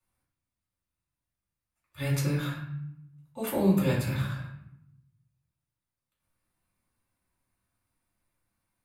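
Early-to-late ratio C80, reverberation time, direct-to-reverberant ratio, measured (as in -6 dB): 7.0 dB, 0.75 s, -6.5 dB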